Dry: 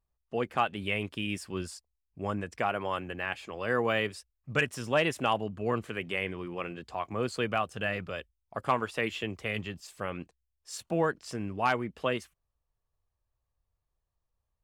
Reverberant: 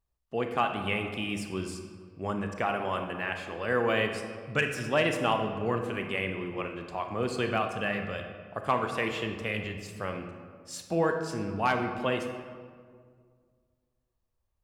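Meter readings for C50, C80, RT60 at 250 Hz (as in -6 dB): 6.0 dB, 8.0 dB, 2.3 s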